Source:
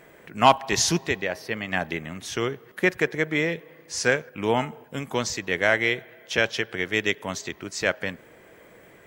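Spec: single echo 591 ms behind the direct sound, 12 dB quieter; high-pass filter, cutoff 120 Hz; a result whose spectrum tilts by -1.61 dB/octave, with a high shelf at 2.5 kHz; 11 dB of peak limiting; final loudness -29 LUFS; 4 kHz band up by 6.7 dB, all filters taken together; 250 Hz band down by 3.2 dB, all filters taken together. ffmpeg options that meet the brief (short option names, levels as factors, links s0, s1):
-af "highpass=120,equalizer=f=250:t=o:g=-4.5,highshelf=f=2500:g=6,equalizer=f=4000:t=o:g=3.5,alimiter=limit=0.282:level=0:latency=1,aecho=1:1:591:0.251,volume=0.668"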